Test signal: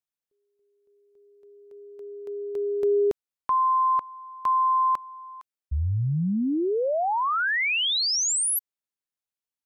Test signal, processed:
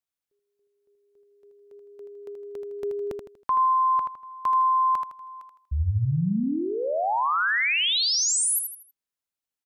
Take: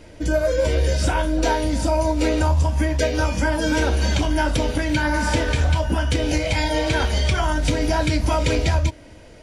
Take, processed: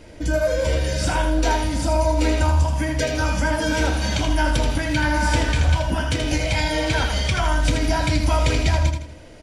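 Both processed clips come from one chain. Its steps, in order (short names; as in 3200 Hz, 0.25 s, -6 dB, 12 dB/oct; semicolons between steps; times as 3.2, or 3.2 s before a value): dynamic EQ 410 Hz, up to -5 dB, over -34 dBFS, Q 1.4; on a send: feedback echo 80 ms, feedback 36%, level -6 dB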